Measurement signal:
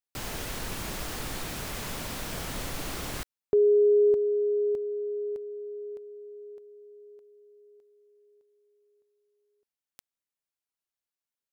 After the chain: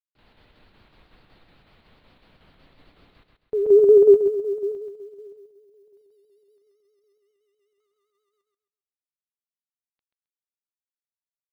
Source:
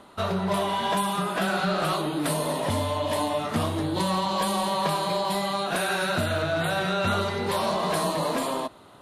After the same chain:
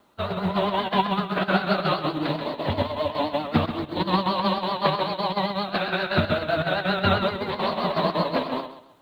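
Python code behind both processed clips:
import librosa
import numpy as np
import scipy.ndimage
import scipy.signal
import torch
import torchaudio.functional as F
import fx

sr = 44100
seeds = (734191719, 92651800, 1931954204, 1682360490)

p1 = scipy.signal.sosfilt(scipy.signal.cheby1(5, 1.0, 4300.0, 'lowpass', fs=sr, output='sos'), x)
p2 = fx.vibrato(p1, sr, rate_hz=7.7, depth_cents=78.0)
p3 = fx.quant_dither(p2, sr, seeds[0], bits=10, dither='none')
p4 = fx.chopper(p3, sr, hz=5.4, depth_pct=60, duty_pct=75)
p5 = p4 + fx.echo_feedback(p4, sr, ms=133, feedback_pct=33, wet_db=-4.0, dry=0)
p6 = fx.upward_expand(p5, sr, threshold_db=-33.0, expansion=2.5)
y = p6 * librosa.db_to_amplitude(6.5)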